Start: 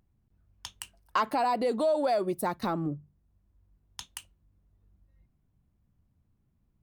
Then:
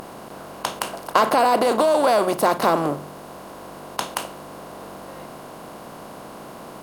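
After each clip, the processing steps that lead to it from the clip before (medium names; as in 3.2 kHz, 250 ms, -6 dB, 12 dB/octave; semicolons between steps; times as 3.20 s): spectral levelling over time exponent 0.4; bass shelf 250 Hz -7.5 dB; hum notches 60/120/180 Hz; trim +6.5 dB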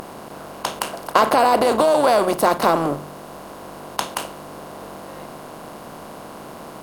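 AM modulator 150 Hz, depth 25%; trim +3.5 dB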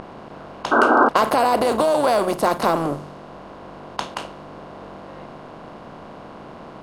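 bass shelf 170 Hz +4.5 dB; level-controlled noise filter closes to 3 kHz, open at -13.5 dBFS; painted sound noise, 0.71–1.09 s, 220–1600 Hz -12 dBFS; trim -2.5 dB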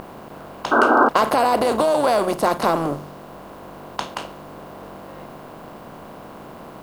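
added noise blue -58 dBFS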